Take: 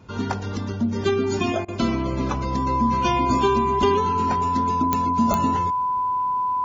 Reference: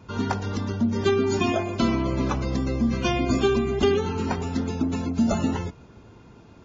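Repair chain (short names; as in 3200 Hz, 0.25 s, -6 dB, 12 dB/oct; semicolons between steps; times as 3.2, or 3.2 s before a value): de-click; notch 1000 Hz, Q 30; interpolate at 1.65, 31 ms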